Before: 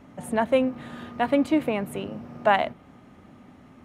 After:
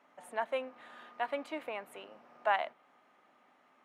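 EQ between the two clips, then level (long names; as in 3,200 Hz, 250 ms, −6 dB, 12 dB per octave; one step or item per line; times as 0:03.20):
high-pass filter 750 Hz 12 dB per octave
high-shelf EQ 3,900 Hz −9 dB
−6.5 dB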